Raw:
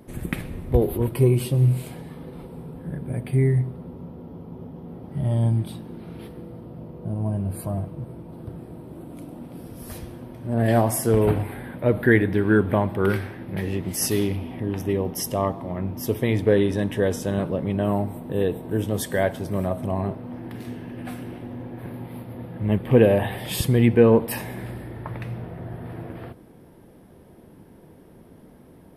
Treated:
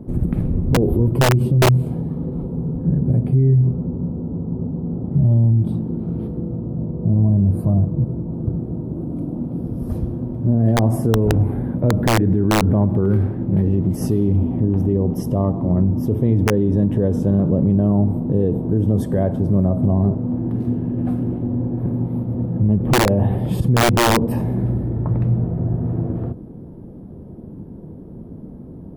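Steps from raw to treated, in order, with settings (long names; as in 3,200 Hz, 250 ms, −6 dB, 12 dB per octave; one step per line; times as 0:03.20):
drawn EQ curve 210 Hz 0 dB, 1,300 Hz −17 dB, 1,900 Hz −27 dB
wrap-around overflow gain 12.5 dB
boost into a limiter +23 dB
level −8 dB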